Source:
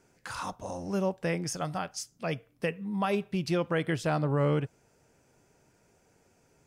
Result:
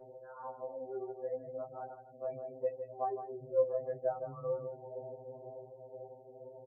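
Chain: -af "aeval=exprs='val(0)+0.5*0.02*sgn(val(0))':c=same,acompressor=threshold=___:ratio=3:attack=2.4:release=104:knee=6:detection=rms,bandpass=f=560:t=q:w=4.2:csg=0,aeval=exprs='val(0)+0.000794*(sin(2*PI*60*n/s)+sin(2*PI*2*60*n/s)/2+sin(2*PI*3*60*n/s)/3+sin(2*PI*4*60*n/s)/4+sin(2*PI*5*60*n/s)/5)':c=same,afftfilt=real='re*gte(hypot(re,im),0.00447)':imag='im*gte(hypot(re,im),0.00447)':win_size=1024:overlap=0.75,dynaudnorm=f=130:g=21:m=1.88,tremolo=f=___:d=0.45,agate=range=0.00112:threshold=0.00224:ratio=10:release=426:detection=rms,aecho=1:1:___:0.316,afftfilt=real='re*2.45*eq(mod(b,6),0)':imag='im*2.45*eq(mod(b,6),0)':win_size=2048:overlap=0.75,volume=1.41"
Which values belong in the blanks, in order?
0.0398, 2, 160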